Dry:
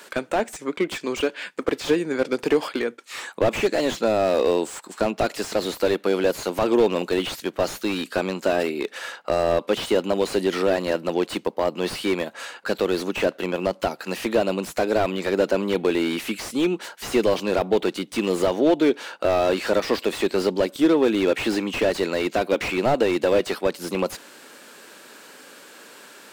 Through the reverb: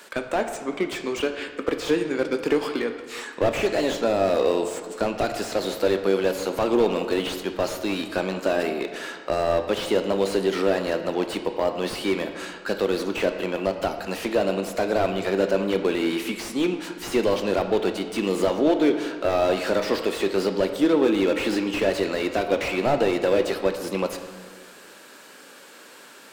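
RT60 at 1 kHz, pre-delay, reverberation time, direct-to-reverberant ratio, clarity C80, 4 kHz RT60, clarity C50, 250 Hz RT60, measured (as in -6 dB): 1.6 s, 10 ms, 1.6 s, 6.0 dB, 9.5 dB, 1.1 s, 8.0 dB, 1.7 s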